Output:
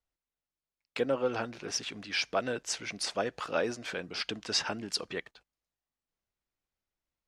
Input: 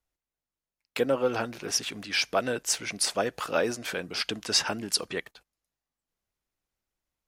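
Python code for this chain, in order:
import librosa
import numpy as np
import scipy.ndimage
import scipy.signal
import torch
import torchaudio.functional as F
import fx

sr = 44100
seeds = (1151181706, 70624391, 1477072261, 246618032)

y = scipy.signal.sosfilt(scipy.signal.butter(2, 6200.0, 'lowpass', fs=sr, output='sos'), x)
y = y * librosa.db_to_amplitude(-4.0)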